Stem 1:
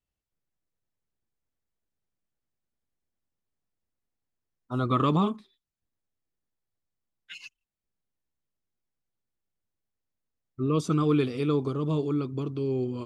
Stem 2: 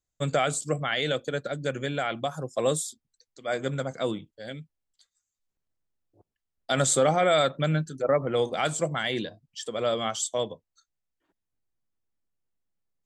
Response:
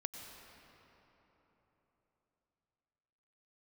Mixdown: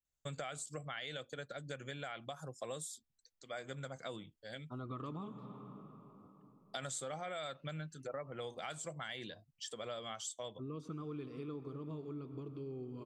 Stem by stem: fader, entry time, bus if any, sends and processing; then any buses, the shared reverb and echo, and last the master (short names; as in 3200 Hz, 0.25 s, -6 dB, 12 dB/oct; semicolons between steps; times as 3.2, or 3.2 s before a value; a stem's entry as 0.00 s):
-15.0 dB, 0.00 s, send -3 dB, high shelf 4100 Hz -10 dB
-5.0 dB, 0.05 s, no send, bell 310 Hz -6.5 dB 2.2 oct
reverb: on, RT60 4.0 s, pre-delay 87 ms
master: compressor 4:1, threshold -42 dBFS, peak gain reduction 14 dB